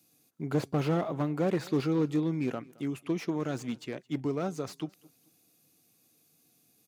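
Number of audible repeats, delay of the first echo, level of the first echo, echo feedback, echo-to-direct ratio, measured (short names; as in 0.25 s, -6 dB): 2, 0.218 s, -23.5 dB, 29%, -23.0 dB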